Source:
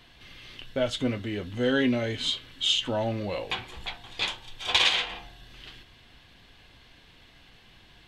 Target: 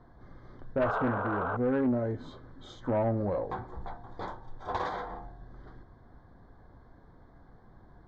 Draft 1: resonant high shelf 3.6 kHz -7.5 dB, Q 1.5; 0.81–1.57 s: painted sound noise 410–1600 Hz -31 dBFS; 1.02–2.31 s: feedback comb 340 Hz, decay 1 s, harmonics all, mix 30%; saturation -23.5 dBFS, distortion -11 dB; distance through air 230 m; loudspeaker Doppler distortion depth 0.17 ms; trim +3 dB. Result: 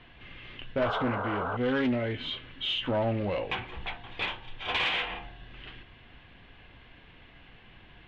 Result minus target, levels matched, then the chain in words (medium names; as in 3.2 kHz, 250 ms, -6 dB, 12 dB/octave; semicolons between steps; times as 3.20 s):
2 kHz band +6.0 dB
Butterworth band-stop 2.7 kHz, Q 0.57; resonant high shelf 3.6 kHz -7.5 dB, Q 1.5; 0.81–1.57 s: painted sound noise 410–1600 Hz -31 dBFS; 1.02–2.31 s: feedback comb 340 Hz, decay 1 s, harmonics all, mix 30%; saturation -23.5 dBFS, distortion -16 dB; distance through air 230 m; loudspeaker Doppler distortion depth 0.17 ms; trim +3 dB